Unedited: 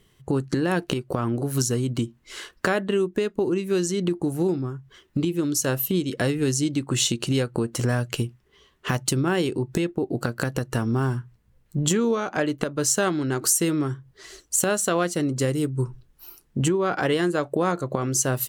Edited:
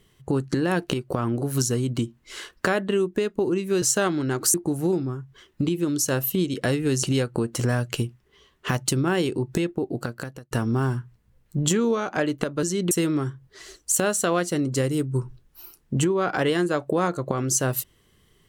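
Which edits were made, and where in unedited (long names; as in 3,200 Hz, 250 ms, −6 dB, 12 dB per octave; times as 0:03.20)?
0:03.82–0:04.10: swap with 0:12.83–0:13.55
0:06.59–0:07.23: remove
0:09.70–0:10.71: fade out equal-power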